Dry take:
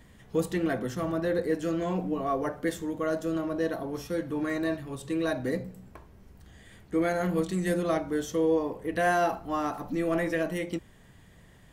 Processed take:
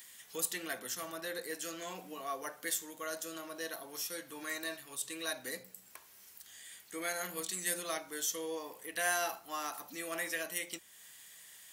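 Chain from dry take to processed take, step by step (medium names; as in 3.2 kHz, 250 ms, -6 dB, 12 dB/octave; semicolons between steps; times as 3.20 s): differentiator; tape noise reduction on one side only encoder only; trim +8.5 dB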